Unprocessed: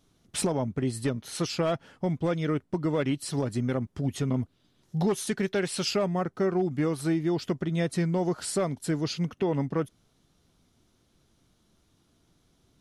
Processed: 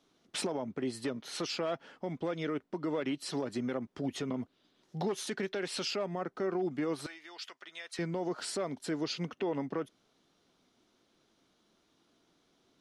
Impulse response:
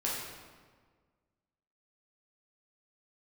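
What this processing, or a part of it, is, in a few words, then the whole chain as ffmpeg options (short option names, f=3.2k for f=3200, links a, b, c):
DJ mixer with the lows and highs turned down: -filter_complex "[0:a]acrossover=split=220 6200:gain=0.112 1 0.251[a][b][c];[a][b][c]amix=inputs=3:normalize=0,alimiter=level_in=1.5dB:limit=-24dB:level=0:latency=1:release=78,volume=-1.5dB,asettb=1/sr,asplit=3[d][e][f];[d]atrim=end=7.064[g];[e]atrim=start=7.06:end=7.99,asetpts=PTS-STARTPTS,afade=t=in:d=0.004:c=qsin,afade=t=out:st=0.926:d=0.004:c=qsin,highpass=1.4k[h];[f]atrim=start=7.986[i];[g][h]acrossfade=d=0.004:c1=hsin:c2=qsin[j];[j][i]acrossfade=d=0.004:c1=qsin:c2=hsin"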